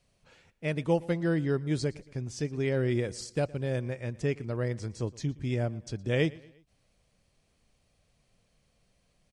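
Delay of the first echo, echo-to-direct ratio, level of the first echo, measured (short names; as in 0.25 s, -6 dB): 0.116 s, -21.0 dB, -22.0 dB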